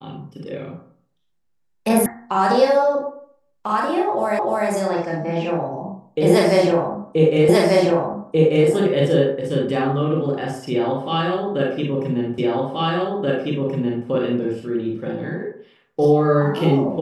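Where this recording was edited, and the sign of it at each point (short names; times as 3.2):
2.06 sound cut off
4.39 repeat of the last 0.3 s
7.49 repeat of the last 1.19 s
12.38 repeat of the last 1.68 s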